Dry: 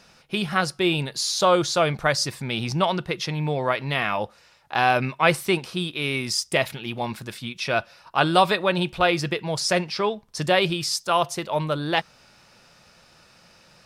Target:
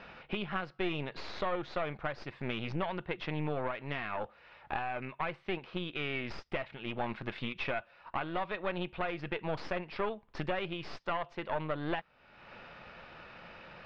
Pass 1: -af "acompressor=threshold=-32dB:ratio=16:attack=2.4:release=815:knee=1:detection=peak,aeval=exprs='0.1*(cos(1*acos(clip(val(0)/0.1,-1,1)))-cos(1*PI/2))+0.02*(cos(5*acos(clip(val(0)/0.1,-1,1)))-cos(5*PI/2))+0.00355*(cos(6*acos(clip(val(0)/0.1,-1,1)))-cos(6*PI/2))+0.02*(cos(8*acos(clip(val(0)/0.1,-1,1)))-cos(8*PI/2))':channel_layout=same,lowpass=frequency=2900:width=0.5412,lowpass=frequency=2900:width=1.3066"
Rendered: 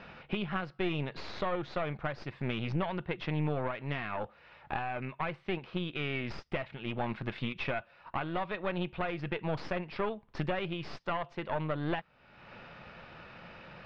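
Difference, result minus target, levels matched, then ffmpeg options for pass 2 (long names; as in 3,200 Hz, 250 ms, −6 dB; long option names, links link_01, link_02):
125 Hz band +4.0 dB
-af "acompressor=threshold=-32dB:ratio=16:attack=2.4:release=815:knee=1:detection=peak,aeval=exprs='0.1*(cos(1*acos(clip(val(0)/0.1,-1,1)))-cos(1*PI/2))+0.02*(cos(5*acos(clip(val(0)/0.1,-1,1)))-cos(5*PI/2))+0.00355*(cos(6*acos(clip(val(0)/0.1,-1,1)))-cos(6*PI/2))+0.02*(cos(8*acos(clip(val(0)/0.1,-1,1)))-cos(8*PI/2))':channel_layout=same,lowpass=frequency=2900:width=0.5412,lowpass=frequency=2900:width=1.3066,equalizer=frequency=130:width=0.73:gain=-5.5"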